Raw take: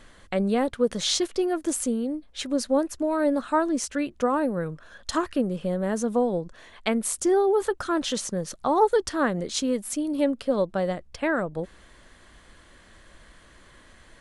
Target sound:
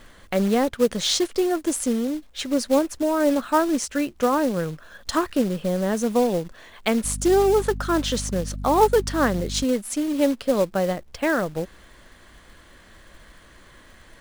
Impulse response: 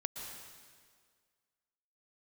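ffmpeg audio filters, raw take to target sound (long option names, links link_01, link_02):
-filter_complex "[0:a]highshelf=frequency=9300:gain=-3.5,acrusher=bits=4:mode=log:mix=0:aa=0.000001,asettb=1/sr,asplit=3[link_01][link_02][link_03];[link_01]atrim=end=7.044[link_04];[link_02]atrim=start=7.04:end=9.64,asetpts=PTS-STARTPTS,afade=type=in:duration=0.004:curve=qsin,afade=type=out:start_time=2.596:duration=0.004:curve=qsin,aeval=exprs='val(0)+0.0224*(sin(2*PI*50*n/s)+sin(2*PI*2*50*n/s)/2+sin(2*PI*3*50*n/s)/3+sin(2*PI*4*50*n/s)/4+sin(2*PI*5*50*n/s)/5)':channel_layout=same[link_05];[link_03]atrim=start=9.636[link_06];[link_04][link_05]acrossfade=duration=0.004:curve1=hsin:curve2=qsin[link_07];[link_07][link_06]acrossfade=duration=0.004:curve1=qsin:curve2=hsin,volume=3dB"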